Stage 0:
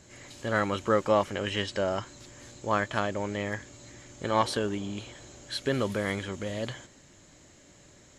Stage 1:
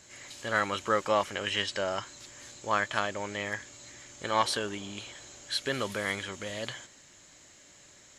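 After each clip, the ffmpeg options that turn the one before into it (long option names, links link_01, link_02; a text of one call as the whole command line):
ffmpeg -i in.wav -af "tiltshelf=frequency=680:gain=-6,volume=-2.5dB" out.wav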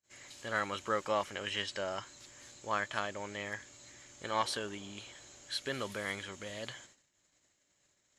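ffmpeg -i in.wav -af "agate=range=-31dB:threshold=-53dB:ratio=16:detection=peak,volume=-6dB" out.wav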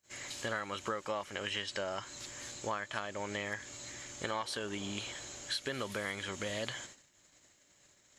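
ffmpeg -i in.wav -af "acompressor=threshold=-42dB:ratio=8,volume=8.5dB" out.wav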